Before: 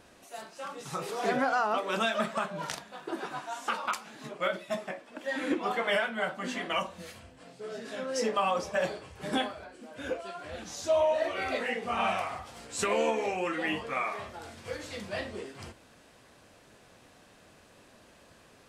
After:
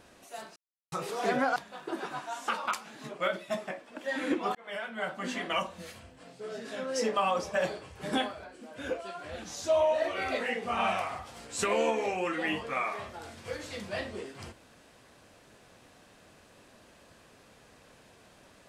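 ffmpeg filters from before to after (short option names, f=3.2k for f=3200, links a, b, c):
-filter_complex "[0:a]asplit=5[a][b][c][d][e];[a]atrim=end=0.56,asetpts=PTS-STARTPTS,afade=t=out:st=0.556:d=0.004:c=hsin[f];[b]atrim=start=0.56:end=0.92,asetpts=PTS-STARTPTS,volume=0[g];[c]atrim=start=0.92:end=1.562,asetpts=PTS-STARTPTS,afade=t=in:d=0.004:c=hsin[h];[d]atrim=start=2.758:end=5.75,asetpts=PTS-STARTPTS,afade=t=out:st=2.988:d=0.004:c=hsin[i];[e]atrim=start=5.75,asetpts=PTS-STARTPTS,afade=t=in:d=0.67[j];[f][g][h]concat=n=3:v=0:a=1[k];[i][j]concat=n=2:v=0:a=1[l];[k][l]acrossfade=d=0.004:c1=hsin:c2=hsin"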